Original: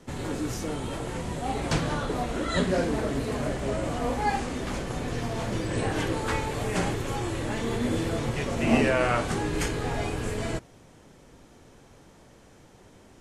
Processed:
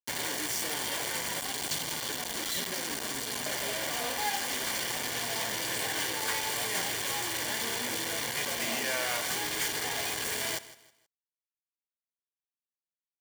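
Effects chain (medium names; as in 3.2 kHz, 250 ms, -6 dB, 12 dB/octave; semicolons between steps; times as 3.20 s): compression 3:1, threshold -34 dBFS, peak gain reduction 13.5 dB; 1.40–3.46 s: high-order bell 1.1 kHz -9 dB 2.5 oct; word length cut 6-bit, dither none; tilt shelf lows -9 dB, about 660 Hz; comb of notches 1.3 kHz; feedback delay 159 ms, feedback 32%, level -17 dB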